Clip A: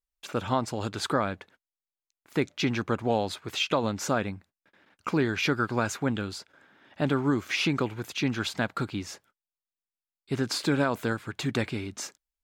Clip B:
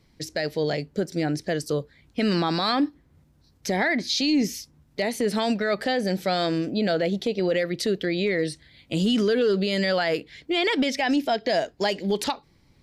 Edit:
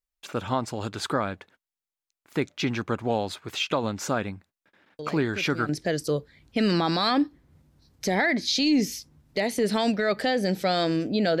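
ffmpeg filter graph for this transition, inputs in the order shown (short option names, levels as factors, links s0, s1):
-filter_complex "[1:a]asplit=2[s0][s1];[0:a]apad=whole_dur=11.4,atrim=end=11.4,atrim=end=5.692[s2];[s1]atrim=start=1.308:end=7.02[s3];[s0]atrim=start=0.61:end=1.31,asetpts=PTS-STARTPTS,volume=0.266,afade=t=in:d=0.004:c=hsin,afade=t=out:st=0.696:d=0.004:c=hsin,adelay=4990[s4];[s2][s3]acrossfade=d=0.004:c1=hsin:c2=hsin[s5];[s5][s4]amix=inputs=2:normalize=0"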